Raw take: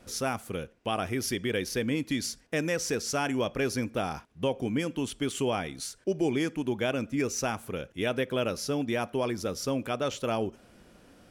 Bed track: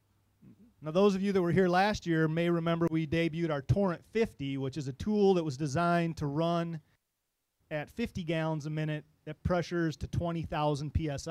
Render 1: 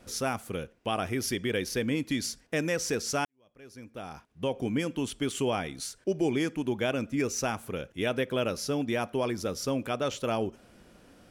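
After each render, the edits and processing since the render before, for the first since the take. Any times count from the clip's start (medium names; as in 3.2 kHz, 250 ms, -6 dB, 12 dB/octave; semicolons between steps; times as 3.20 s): 3.25–4.62 s: fade in quadratic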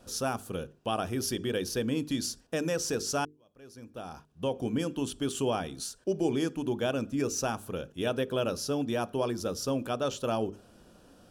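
peaking EQ 2.1 kHz -14.5 dB 0.35 oct; hum notches 50/100/150/200/250/300/350/400/450 Hz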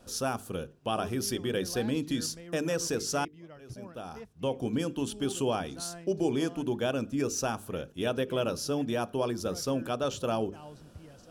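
add bed track -17.5 dB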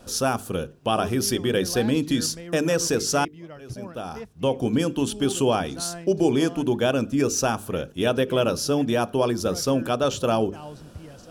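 trim +8 dB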